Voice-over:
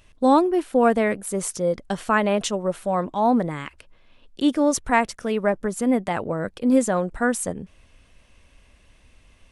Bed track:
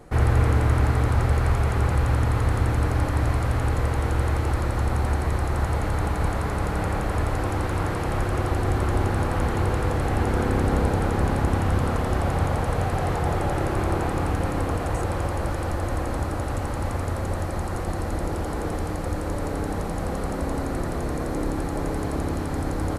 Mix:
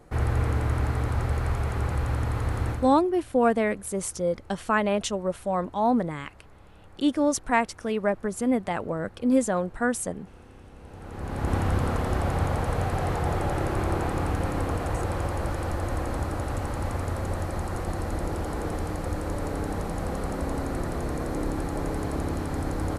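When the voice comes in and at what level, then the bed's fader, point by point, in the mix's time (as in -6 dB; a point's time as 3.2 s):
2.60 s, -3.5 dB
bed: 2.71 s -5.5 dB
3.05 s -27.5 dB
10.76 s -27.5 dB
11.53 s -2.5 dB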